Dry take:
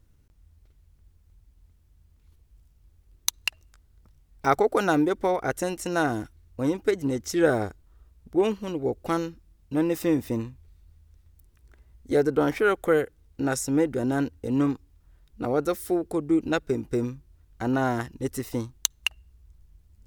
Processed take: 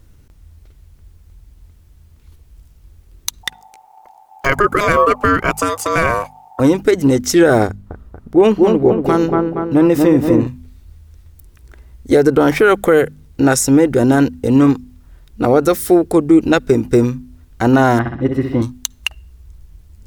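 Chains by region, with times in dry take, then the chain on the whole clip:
0:03.43–0:06.60: parametric band 3,800 Hz −5.5 dB 0.53 octaves + ring modulation 820 Hz
0:07.67–0:10.47: high-shelf EQ 2,500 Hz −8 dB + delay with a low-pass on its return 235 ms, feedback 53%, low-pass 1,600 Hz, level −4 dB
0:17.99–0:18.62: high-frequency loss of the air 410 metres + notch comb filter 450 Hz + flutter between parallel walls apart 11 metres, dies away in 0.63 s
whole clip: hum removal 50.1 Hz, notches 5; boost into a limiter +15.5 dB; level −1 dB

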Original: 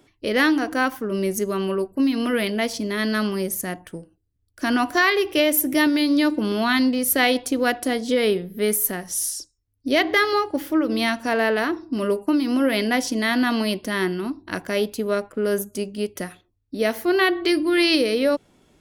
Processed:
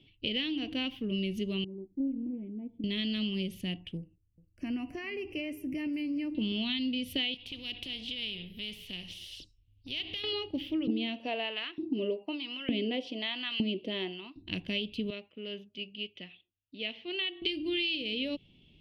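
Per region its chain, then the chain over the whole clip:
0:01.64–0:02.84: formant resonators in series u + highs frequency-modulated by the lows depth 0.27 ms
0:03.97–0:06.35: Butterworth band-reject 3,600 Hz, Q 1 + downward compressor 2 to 1, threshold −28 dBFS + single-tap delay 406 ms −20.5 dB
0:07.34–0:10.24: downward compressor 3 to 1, threshold −25 dBFS + every bin compressed towards the loudest bin 2 to 1
0:10.87–0:14.36: spectral tilt −3.5 dB per octave + auto-filter high-pass saw up 1.1 Hz 270–1,700 Hz
0:15.10–0:17.42: high-pass filter 1,000 Hz 6 dB per octave + high-frequency loss of the air 230 metres
whole clip: drawn EQ curve 160 Hz 0 dB, 1,500 Hz −27 dB, 2,900 Hz +11 dB, 6,900 Hz −21 dB; downward compressor 6 to 1, threshold −28 dBFS; high-shelf EQ 5,300 Hz −8.5 dB

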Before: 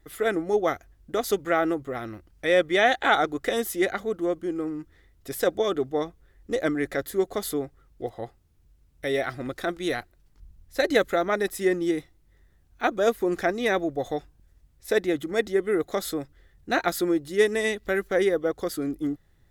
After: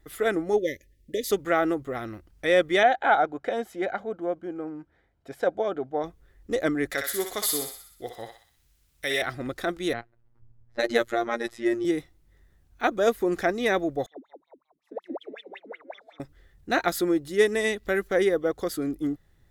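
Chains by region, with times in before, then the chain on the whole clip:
0:00.58–0:01.31: linear-phase brick-wall band-stop 610–1,700 Hz + low-shelf EQ 180 Hz −5.5 dB
0:02.83–0:06.04: resonant band-pass 600 Hz, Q 0.55 + comb filter 1.3 ms, depth 43%
0:06.90–0:09.22: tilt shelving filter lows −7.5 dB, about 1,100 Hz + feedback echo with a high-pass in the loop 62 ms, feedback 58%, high-pass 1,000 Hz, level −3 dB
0:09.93–0:11.85: low-pass that shuts in the quiet parts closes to 1,200 Hz, open at −18.5 dBFS + phases set to zero 117 Hz
0:14.06–0:16.20: echo with shifted repeats 178 ms, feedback 39%, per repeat +110 Hz, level −3.5 dB + LFO wah 5.4 Hz 250–3,400 Hz, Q 18
whole clip: no processing

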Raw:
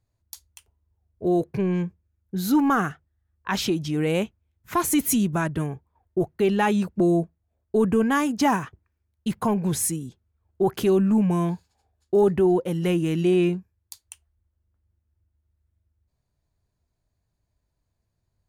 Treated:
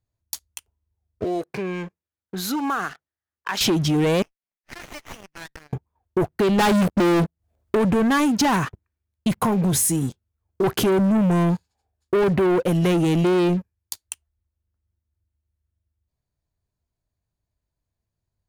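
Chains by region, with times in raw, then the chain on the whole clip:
0:01.24–0:03.61: meter weighting curve A + downward compressor 2.5 to 1, threshold −38 dBFS
0:04.22–0:05.73: elliptic band-pass filter 1,800–5,900 Hz + downward compressor 2.5 to 1, threshold −44 dBFS + windowed peak hold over 9 samples
0:06.58–0:07.75: upward compression, threshold −43 dBFS + leveller curve on the samples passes 3
0:09.41–0:10.64: high-shelf EQ 9,600 Hz +5 dB + downward compressor 3 to 1, threshold −26 dBFS + double-tracking delay 22 ms −13 dB
whole clip: leveller curve on the samples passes 3; downward compressor, threshold −17 dBFS

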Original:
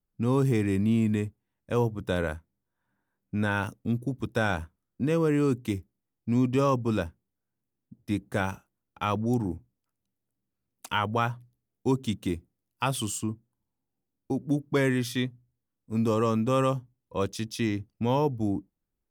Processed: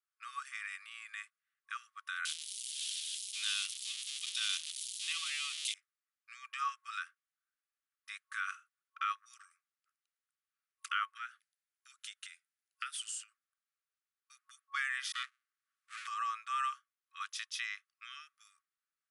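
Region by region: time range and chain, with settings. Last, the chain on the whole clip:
0:02.25–0:05.74: spike at every zero crossing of −22.5 dBFS + high shelf with overshoot 2,200 Hz +14 dB, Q 3 + multiband upward and downward expander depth 100%
0:11.17–0:13.32: high-shelf EQ 7,800 Hz +6 dB + downward compressor 12 to 1, threshold −32 dBFS + Butterworth high-pass 1,300 Hz 72 dB per octave
0:15.12–0:16.07: gap after every zero crossing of 0.24 ms + multiband upward and downward compressor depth 40%
whole clip: brickwall limiter −20 dBFS; parametric band 1,400 Hz +8 dB 2.3 octaves; brick-wall band-pass 1,100–11,000 Hz; level −4.5 dB

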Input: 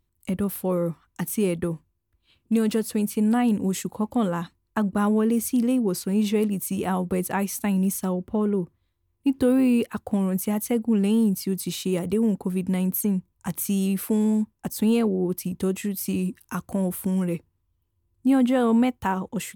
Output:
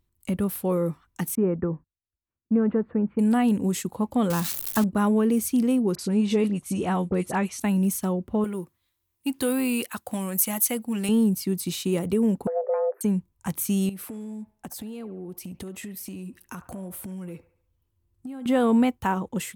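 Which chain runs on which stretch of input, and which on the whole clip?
0:01.35–0:03.19: inverse Chebyshev low-pass filter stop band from 5,200 Hz, stop band 60 dB + noise gate −56 dBFS, range −23 dB
0:04.30–0:04.84: spike at every zero crossing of −18.5 dBFS + low-shelf EQ 140 Hz +8.5 dB
0:05.95–0:07.60: Bessel low-pass filter 7,600 Hz, order 6 + all-pass dispersion highs, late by 40 ms, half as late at 2,000 Hz
0:08.44–0:11.09: spectral tilt +3 dB per octave + notch filter 430 Hz, Q 5.3
0:12.47–0:13.01: elliptic low-pass filter 1,500 Hz, stop band 50 dB + frequency shifter +320 Hz + upward compression, threshold −31 dBFS
0:13.89–0:18.46: downward compressor 16 to 1, threshold −33 dBFS + delay with a band-pass on its return 71 ms, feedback 44%, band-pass 1,100 Hz, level −11.5 dB
whole clip: no processing

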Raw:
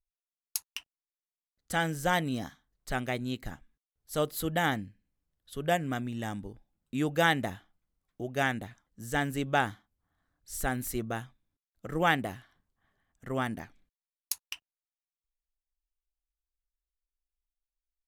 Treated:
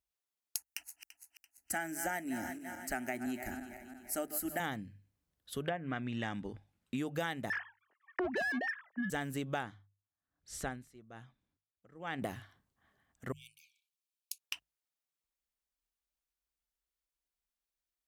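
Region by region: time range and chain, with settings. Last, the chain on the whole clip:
0:00.56–0:04.60: feedback delay that plays each chunk backwards 169 ms, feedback 68%, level −13.5 dB + high-shelf EQ 4,700 Hz +6.5 dB + phaser with its sweep stopped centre 720 Hz, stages 8
0:05.64–0:06.96: treble cut that deepens with the level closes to 1,400 Hz, closed at −24.5 dBFS + parametric band 2,200 Hz +7 dB 1.7 octaves
0:07.50–0:09.10: three sine waves on the formant tracks + parametric band 1,800 Hz +14 dB 0.32 octaves + mid-hump overdrive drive 28 dB, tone 1,500 Hz, clips at −15.5 dBFS
0:09.63–0:12.22: high-frequency loss of the air 68 metres + tremolo with a sine in dB 1.1 Hz, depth 25 dB
0:13.32–0:14.40: downward compressor 2 to 1, threshold −49 dBFS + linear-phase brick-wall high-pass 2,200 Hz
whole clip: high-pass filter 61 Hz; mains-hum notches 50/100/150 Hz; downward compressor 6 to 1, threshold −36 dBFS; level +2 dB

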